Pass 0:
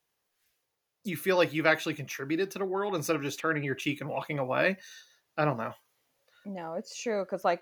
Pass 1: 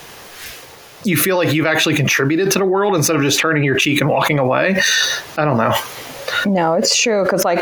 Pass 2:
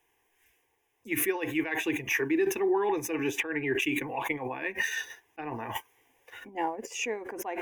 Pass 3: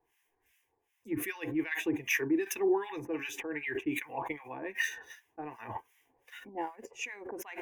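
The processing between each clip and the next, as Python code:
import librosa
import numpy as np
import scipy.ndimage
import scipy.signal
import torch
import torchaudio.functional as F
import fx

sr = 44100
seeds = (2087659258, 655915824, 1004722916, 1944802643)

y1 = fx.high_shelf(x, sr, hz=7100.0, db=-8.0)
y1 = fx.env_flatten(y1, sr, amount_pct=100)
y1 = y1 * 10.0 ** (5.5 / 20.0)
y2 = fx.fixed_phaser(y1, sr, hz=880.0, stages=8)
y2 = fx.upward_expand(y2, sr, threshold_db=-31.0, expansion=2.5)
y2 = y2 * 10.0 ** (-8.0 / 20.0)
y3 = fx.harmonic_tremolo(y2, sr, hz=2.6, depth_pct=100, crossover_hz=1200.0)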